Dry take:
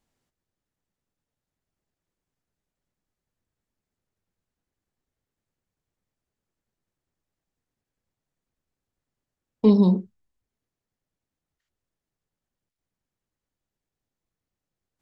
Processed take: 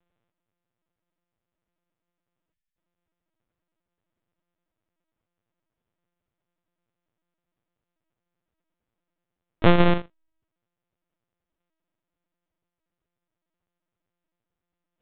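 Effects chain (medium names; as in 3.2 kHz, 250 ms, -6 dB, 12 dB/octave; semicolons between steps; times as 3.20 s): sorted samples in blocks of 128 samples; spectral selection erased 2.52–2.77 s, 200–1500 Hz; in parallel at -4.5 dB: short-mantissa float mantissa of 2-bit; on the sum: LPC vocoder at 8 kHz pitch kept; trim -3 dB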